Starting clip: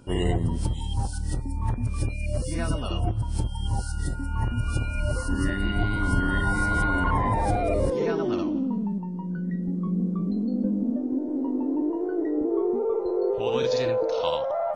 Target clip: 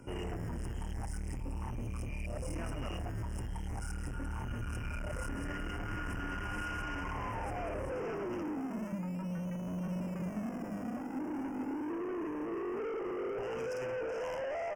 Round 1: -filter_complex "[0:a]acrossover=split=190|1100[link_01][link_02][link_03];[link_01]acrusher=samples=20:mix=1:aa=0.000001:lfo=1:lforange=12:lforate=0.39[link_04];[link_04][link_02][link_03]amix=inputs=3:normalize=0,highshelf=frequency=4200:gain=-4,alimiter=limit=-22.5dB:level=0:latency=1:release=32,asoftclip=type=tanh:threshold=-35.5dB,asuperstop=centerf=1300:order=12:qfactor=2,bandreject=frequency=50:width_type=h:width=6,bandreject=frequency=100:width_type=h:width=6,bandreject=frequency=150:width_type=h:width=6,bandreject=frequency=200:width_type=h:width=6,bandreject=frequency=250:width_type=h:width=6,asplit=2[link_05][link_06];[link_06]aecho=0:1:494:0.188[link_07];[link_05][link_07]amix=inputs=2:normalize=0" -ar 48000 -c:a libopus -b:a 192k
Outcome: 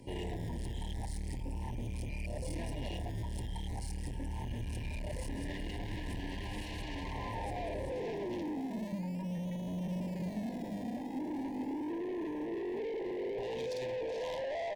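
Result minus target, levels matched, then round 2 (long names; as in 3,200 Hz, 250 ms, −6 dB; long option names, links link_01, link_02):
4,000 Hz band +4.0 dB
-filter_complex "[0:a]acrossover=split=190|1100[link_01][link_02][link_03];[link_01]acrusher=samples=20:mix=1:aa=0.000001:lfo=1:lforange=12:lforate=0.39[link_04];[link_04][link_02][link_03]amix=inputs=3:normalize=0,highshelf=frequency=4200:gain=-4,alimiter=limit=-22.5dB:level=0:latency=1:release=32,asoftclip=type=tanh:threshold=-35.5dB,asuperstop=centerf=3900:order=12:qfactor=2,bandreject=frequency=50:width_type=h:width=6,bandreject=frequency=100:width_type=h:width=6,bandreject=frequency=150:width_type=h:width=6,bandreject=frequency=200:width_type=h:width=6,bandreject=frequency=250:width_type=h:width=6,asplit=2[link_05][link_06];[link_06]aecho=0:1:494:0.188[link_07];[link_05][link_07]amix=inputs=2:normalize=0" -ar 48000 -c:a libopus -b:a 192k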